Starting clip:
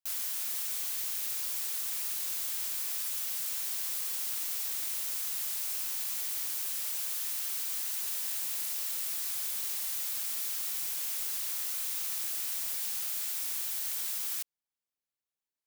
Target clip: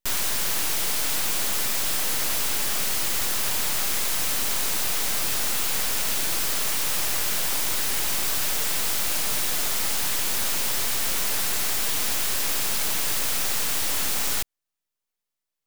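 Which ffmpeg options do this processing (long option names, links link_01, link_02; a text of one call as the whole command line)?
ffmpeg -i in.wav -af "aeval=exprs='abs(val(0))':channel_layout=same,aeval=exprs='0.0891*(cos(1*acos(clip(val(0)/0.0891,-1,1)))-cos(1*PI/2))+0.0447*(cos(8*acos(clip(val(0)/0.0891,-1,1)))-cos(8*PI/2))':channel_layout=same,volume=7.5dB" out.wav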